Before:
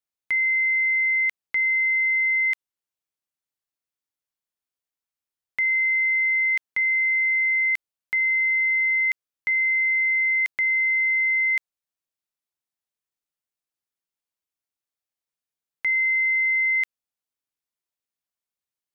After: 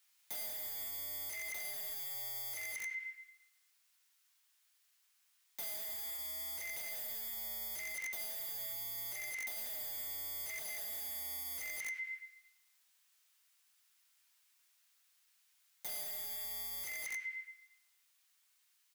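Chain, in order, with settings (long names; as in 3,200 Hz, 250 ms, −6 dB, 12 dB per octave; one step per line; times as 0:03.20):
on a send at −6 dB: convolution reverb RT60 0.85 s, pre-delay 3 ms
on the sum: soft clipping −22 dBFS, distortion −14 dB
high-pass filter 1,400 Hz 12 dB per octave
wrap-around overflow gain 33 dB
flanger 0.19 Hz, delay 9.1 ms, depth 3.7 ms, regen −75%
downward compressor 2 to 1, threshold −52 dBFS, peak gain reduction 7 dB
single-tap delay 188 ms −3.5 dB
speech leveller 0.5 s
brickwall limiter −53 dBFS, peak gain reduction 17.5 dB
level +17.5 dB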